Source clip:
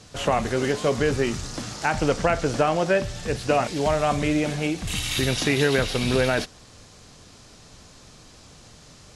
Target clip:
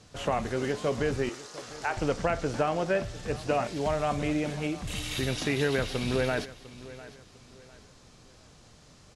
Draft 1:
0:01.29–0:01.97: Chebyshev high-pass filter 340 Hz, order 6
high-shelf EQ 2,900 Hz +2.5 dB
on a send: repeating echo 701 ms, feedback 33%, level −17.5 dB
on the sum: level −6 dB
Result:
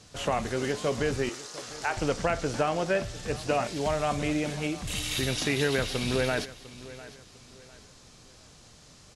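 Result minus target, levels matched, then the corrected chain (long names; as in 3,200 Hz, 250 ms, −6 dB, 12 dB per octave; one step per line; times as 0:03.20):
8,000 Hz band +4.5 dB
0:01.29–0:01.97: Chebyshev high-pass filter 340 Hz, order 6
high-shelf EQ 2,900 Hz −3.5 dB
on a send: repeating echo 701 ms, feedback 33%, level −17.5 dB
on the sum: level −6 dB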